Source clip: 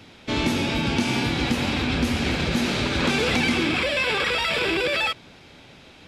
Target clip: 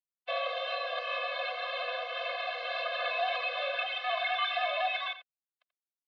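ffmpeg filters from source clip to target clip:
-af "equalizer=f=2.5k:w=4.5:g=-2.5,aecho=1:1:4.2:0.85,acontrast=55,alimiter=limit=-11dB:level=0:latency=1:release=384,aresample=16000,aeval=exprs='sgn(val(0))*max(abs(val(0))-0.00794,0)':c=same,aresample=44100,acrusher=bits=4:mix=0:aa=0.000001,aecho=1:1:85:0.224,highpass=f=340:t=q:w=0.5412,highpass=f=340:t=q:w=1.307,lowpass=f=3.4k:t=q:w=0.5176,lowpass=f=3.4k:t=q:w=0.7071,lowpass=f=3.4k:t=q:w=1.932,afreqshift=250,afftfilt=real='re*eq(mod(floor(b*sr/1024/250),2),0)':imag='im*eq(mod(floor(b*sr/1024/250),2),0)':win_size=1024:overlap=0.75,volume=-6.5dB"

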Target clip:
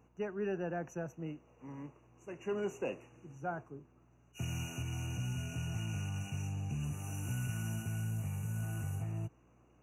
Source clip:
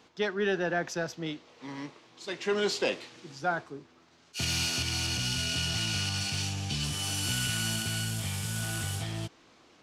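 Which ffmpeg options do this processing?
-af "afftfilt=real='re*(1-between(b*sr/4096,2900,5800))':imag='im*(1-between(b*sr/4096,2900,5800))':win_size=4096:overlap=0.75,aeval=exprs='val(0)+0.000708*(sin(2*PI*60*n/s)+sin(2*PI*2*60*n/s)/2+sin(2*PI*3*60*n/s)/3+sin(2*PI*4*60*n/s)/4+sin(2*PI*5*60*n/s)/5)':c=same,equalizer=f=125:t=o:w=1:g=7,equalizer=f=2k:t=o:w=1:g=-11,equalizer=f=4k:t=o:w=1:g=4,equalizer=f=8k:t=o:w=1:g=-11,volume=-7.5dB"

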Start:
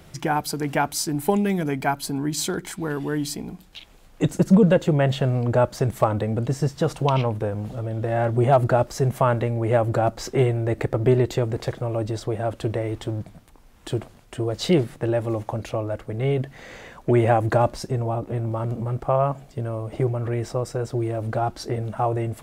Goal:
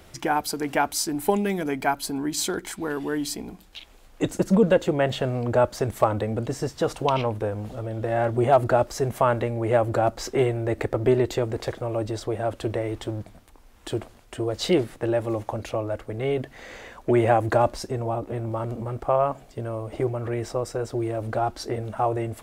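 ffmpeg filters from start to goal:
-af "equalizer=f=150:t=o:w=0.65:g=-11"

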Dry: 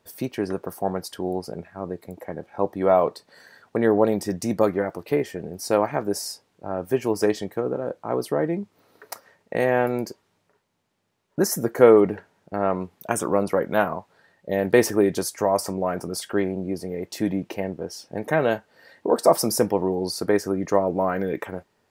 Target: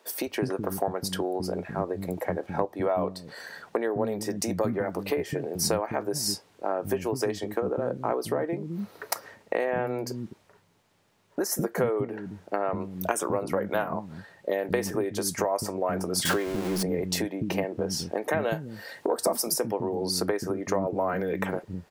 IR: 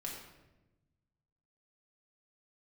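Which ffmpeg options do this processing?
-filter_complex "[0:a]asettb=1/sr,asplit=3[a][b][c];[a]atrim=end=16.254[d];[b]atrim=start=16.25:end=16.83,asetpts=PTS-STARTPTS,afade=t=in:d=0.004:c=qsin,afade=t=out:st=0.576:d=0.004:c=qsin,aeval=exprs='val(0)+0.5*0.0422*sgn(val(0))':c=same[e];[c]atrim=start=16.826[f];[d][e]acrossfade=d=0.004:c1=hsin:c2=qsin[g];[g][f]acrossfade=d=0.004:c1=qsin:c2=hsin,asettb=1/sr,asplit=3[h][i][j];[h]atrim=end=18.464[k];[i]atrim=start=18.46:end=19.54,asetpts=PTS-STARTPTS,afade=t=in:d=0.004:c=qsin,afade=t=out:st=1.076:d=0.004:c=qsin,highshelf=f=6k:g=8[l];[j]atrim=start=19.536[m];[k][l]acrossfade=d=0.004:c1=hsin:c2=qsin[n];[n][m]acrossfade=d=0.004:c1=qsin:c2=hsin,acompressor=threshold=-30dB:ratio=12,asettb=1/sr,asplit=3[o][p][q];[o]atrim=end=9.564[r];[p]atrim=start=9.56:end=10.07,asetpts=PTS-STARTPTS,afade=t=in:d=0.004:c=qsin,afade=t=out:st=0.506:d=0.004:c=qsin,aemphasis=mode=reproduction:type=cd[s];[q]atrim=start=10.066[t];[r][s]acrossfade=d=0.004:c1=hsin:c2=qsin[u];[u][t]acrossfade=d=0.004:c1=qsin:c2=hsin,acrossover=split=270[v][w];[v]adelay=210[x];[x][w]amix=inputs=2:normalize=0,volume=8dB"

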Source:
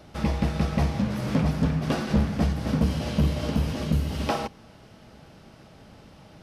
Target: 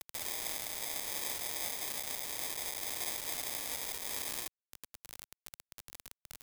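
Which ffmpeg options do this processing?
-filter_complex "[0:a]asettb=1/sr,asplit=3[a][b][c];[a]atrim=end=1.044[d];[b]atrim=start=1.04:end=1.5,asetpts=PTS-STARTPTS,afade=t=in:d=0.004:c=qsin,afade=t=out:st=0.456:d=0.004:c=qsin,lowpass=3.6k[e];[c]atrim=start=1.496[f];[d][e]acrossfade=d=0.004:c1=hsin:c2=qsin[g];[g][f]acrossfade=d=0.004:c1=qsin:c2=hsin,afftfilt=real='re*lt(hypot(re,im),0.1)':imag='im*lt(hypot(re,im),0.1)':win_size=1024:overlap=0.75,aecho=1:1:69|138|207:0.075|0.03|0.012,acrusher=samples=31:mix=1:aa=0.000001,alimiter=level_in=8dB:limit=-24dB:level=0:latency=1:release=268,volume=-8dB,crystalizer=i=3:c=0,acrusher=bits=4:mix=0:aa=0.000001,lowshelf=f=130:g=7.5,volume=1.5dB"

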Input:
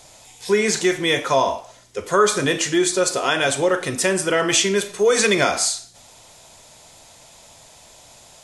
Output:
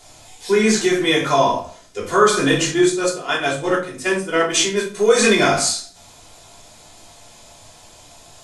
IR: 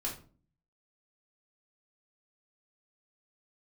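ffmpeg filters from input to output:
-filter_complex "[0:a]asettb=1/sr,asplit=3[a][b][c];[a]atrim=end=2.714[d];[b]atrim=start=2.71:end=4.95,asetpts=PTS-STARTPTS,afade=t=in:d=0.004:c=qsin,afade=t=out:st=2.236:d=0.004:c=qsin,agate=range=-12dB:threshold=-18dB:ratio=16:detection=peak[e];[c]atrim=start=4.946[f];[d][e]acrossfade=d=0.004:c1=hsin:c2=qsin[g];[g][f]acrossfade=d=0.004:c1=qsin:c2=hsin[h];[1:a]atrim=start_sample=2205,afade=t=out:st=0.31:d=0.01,atrim=end_sample=14112[i];[h][i]afir=irnorm=-1:irlink=0"

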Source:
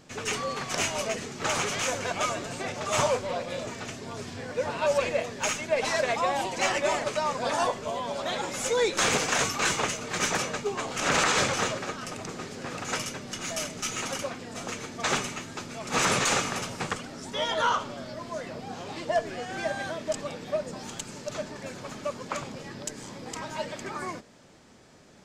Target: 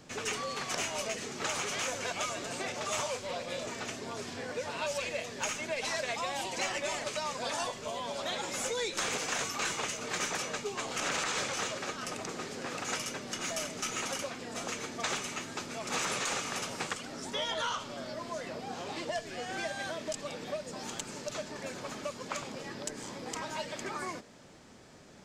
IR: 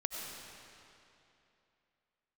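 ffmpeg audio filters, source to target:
-filter_complex "[0:a]acrossover=split=220|2200[a][b][c];[a]acompressor=threshold=-53dB:ratio=4[d];[b]acompressor=threshold=-36dB:ratio=4[e];[c]acompressor=threshold=-35dB:ratio=4[f];[d][e][f]amix=inputs=3:normalize=0"

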